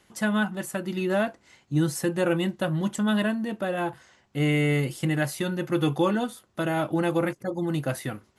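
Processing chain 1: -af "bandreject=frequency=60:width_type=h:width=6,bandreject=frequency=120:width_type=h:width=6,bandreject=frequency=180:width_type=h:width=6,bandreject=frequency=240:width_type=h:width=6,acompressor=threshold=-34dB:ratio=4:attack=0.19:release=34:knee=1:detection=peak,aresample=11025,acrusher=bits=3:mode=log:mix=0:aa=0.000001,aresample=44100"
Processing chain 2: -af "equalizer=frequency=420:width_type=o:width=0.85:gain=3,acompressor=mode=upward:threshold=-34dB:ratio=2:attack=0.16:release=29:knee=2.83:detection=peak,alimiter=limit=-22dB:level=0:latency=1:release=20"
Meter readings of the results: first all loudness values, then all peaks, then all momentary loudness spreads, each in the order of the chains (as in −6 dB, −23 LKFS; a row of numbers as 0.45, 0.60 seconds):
−37.5, −31.0 LKFS; −28.5, −22.0 dBFS; 5, 6 LU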